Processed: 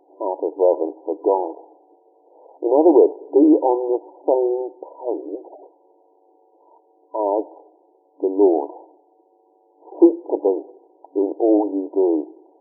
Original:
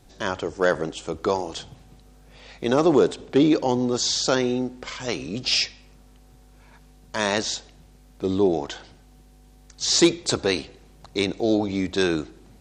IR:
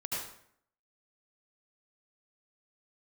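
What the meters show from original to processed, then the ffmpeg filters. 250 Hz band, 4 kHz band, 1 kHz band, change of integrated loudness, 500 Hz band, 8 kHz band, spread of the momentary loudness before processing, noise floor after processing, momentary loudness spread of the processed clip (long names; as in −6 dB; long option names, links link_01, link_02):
+4.0 dB, below −40 dB, +4.5 dB, +4.0 dB, +6.0 dB, below −40 dB, 12 LU, −59 dBFS, 15 LU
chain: -af "afftfilt=real='re*between(b*sr/4096,280,1000)':imag='im*between(b*sr/4096,280,1000)':win_size=4096:overlap=0.75,volume=6dB"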